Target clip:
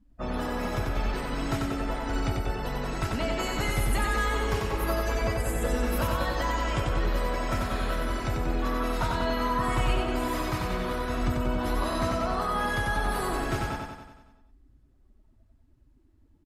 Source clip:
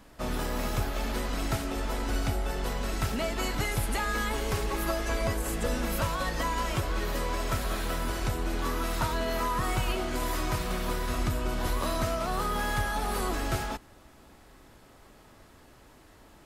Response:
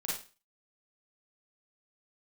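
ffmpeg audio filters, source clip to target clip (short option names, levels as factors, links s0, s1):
-af "afftdn=nr=28:nf=-43,aecho=1:1:93|186|279|372|465|558|651|744:0.708|0.404|0.23|0.131|0.0747|0.0426|0.0243|0.0138"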